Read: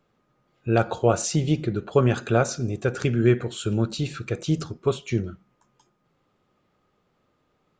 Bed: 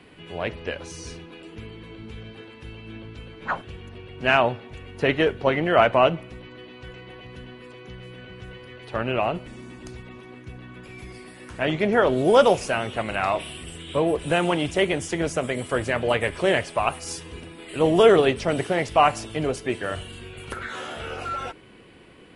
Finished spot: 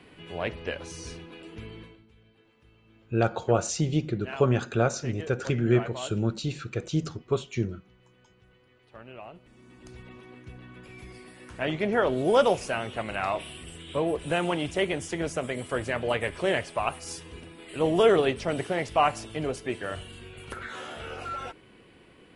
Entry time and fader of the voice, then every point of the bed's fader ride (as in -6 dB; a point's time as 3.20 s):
2.45 s, -3.5 dB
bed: 1.81 s -2.5 dB
2.06 s -20 dB
9.31 s -20 dB
10.03 s -5 dB